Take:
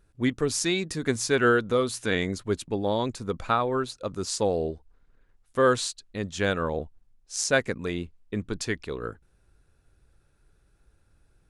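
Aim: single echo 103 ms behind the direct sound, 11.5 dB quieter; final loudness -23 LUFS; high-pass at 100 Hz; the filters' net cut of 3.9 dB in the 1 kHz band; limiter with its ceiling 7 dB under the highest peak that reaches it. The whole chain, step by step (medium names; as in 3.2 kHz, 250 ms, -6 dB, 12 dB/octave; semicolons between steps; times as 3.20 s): high-pass 100 Hz; peaking EQ 1 kHz -5.5 dB; peak limiter -17.5 dBFS; delay 103 ms -11.5 dB; trim +7.5 dB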